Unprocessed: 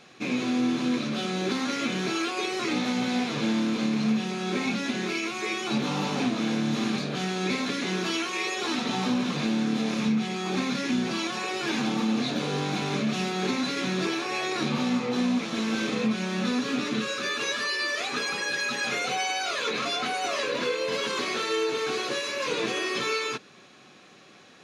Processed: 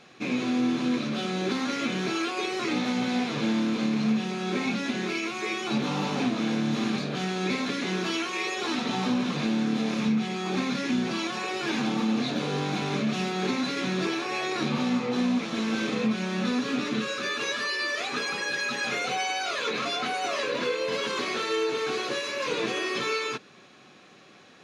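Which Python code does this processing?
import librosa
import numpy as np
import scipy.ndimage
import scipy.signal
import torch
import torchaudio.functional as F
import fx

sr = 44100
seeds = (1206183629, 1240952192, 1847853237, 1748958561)

y = fx.high_shelf(x, sr, hz=5900.0, db=-5.0)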